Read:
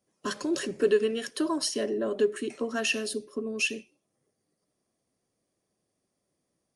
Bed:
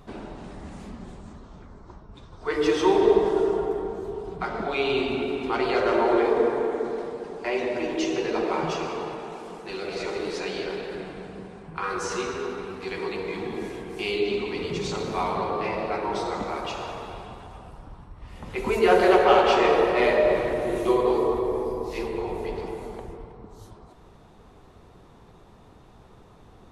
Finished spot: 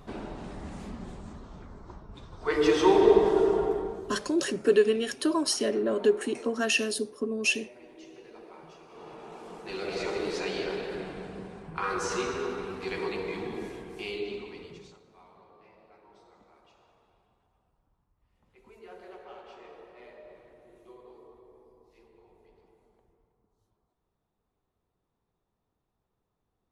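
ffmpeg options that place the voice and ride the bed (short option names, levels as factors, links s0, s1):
-filter_complex "[0:a]adelay=3850,volume=1.26[s0];[1:a]volume=11.2,afade=t=out:st=3.68:d=0.67:silence=0.0749894,afade=t=in:st=8.88:d=1.01:silence=0.0841395,afade=t=out:st=12.95:d=2.05:silence=0.0375837[s1];[s0][s1]amix=inputs=2:normalize=0"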